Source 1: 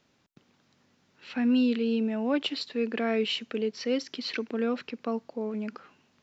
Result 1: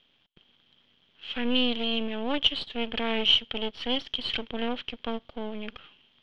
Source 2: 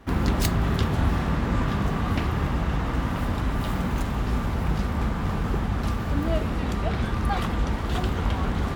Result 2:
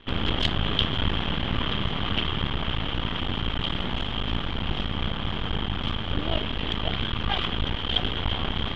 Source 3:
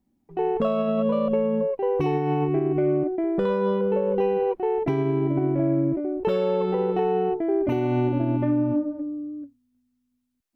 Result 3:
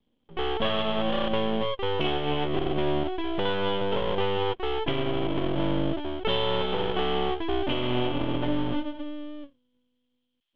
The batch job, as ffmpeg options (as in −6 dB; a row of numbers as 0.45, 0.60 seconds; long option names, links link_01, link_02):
-af "aeval=exprs='max(val(0),0)':channel_layout=same,lowpass=frequency=3200:width_type=q:width=13"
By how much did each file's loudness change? +1.5, −1.5, −4.0 LU